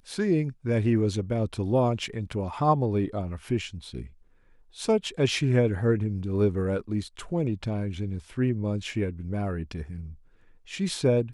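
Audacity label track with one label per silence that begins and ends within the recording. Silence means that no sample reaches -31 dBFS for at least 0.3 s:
4.020000	4.800000	silence
10.010000	10.710000	silence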